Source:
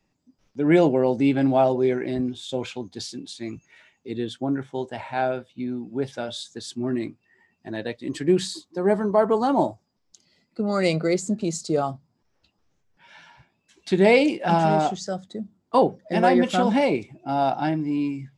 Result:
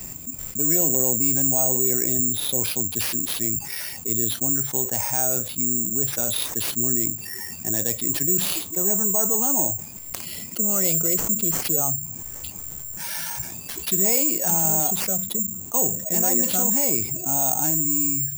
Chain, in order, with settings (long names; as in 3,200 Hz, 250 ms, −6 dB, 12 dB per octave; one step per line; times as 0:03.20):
parametric band 71 Hz +10 dB 2.4 octaves
bad sample-rate conversion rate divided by 6×, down none, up zero stuff
envelope flattener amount 70%
level −14.5 dB